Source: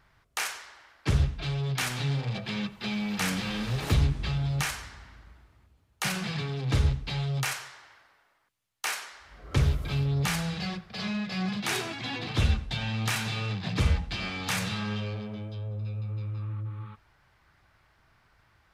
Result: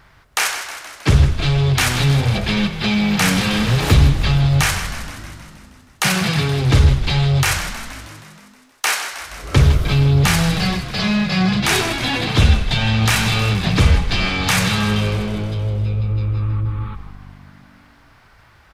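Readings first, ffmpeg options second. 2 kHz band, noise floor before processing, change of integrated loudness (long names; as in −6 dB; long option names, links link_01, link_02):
+13.5 dB, −66 dBFS, +13.0 dB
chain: -filter_complex "[0:a]asplit=2[link_01][link_02];[link_02]alimiter=limit=-21.5dB:level=0:latency=1,volume=-2dB[link_03];[link_01][link_03]amix=inputs=2:normalize=0,asplit=9[link_04][link_05][link_06][link_07][link_08][link_09][link_10][link_11][link_12];[link_05]adelay=158,afreqshift=-49,volume=-11.5dB[link_13];[link_06]adelay=316,afreqshift=-98,volume=-15.4dB[link_14];[link_07]adelay=474,afreqshift=-147,volume=-19.3dB[link_15];[link_08]adelay=632,afreqshift=-196,volume=-23.1dB[link_16];[link_09]adelay=790,afreqshift=-245,volume=-27dB[link_17];[link_10]adelay=948,afreqshift=-294,volume=-30.9dB[link_18];[link_11]adelay=1106,afreqshift=-343,volume=-34.8dB[link_19];[link_12]adelay=1264,afreqshift=-392,volume=-38.6dB[link_20];[link_04][link_13][link_14][link_15][link_16][link_17][link_18][link_19][link_20]amix=inputs=9:normalize=0,volume=8.5dB"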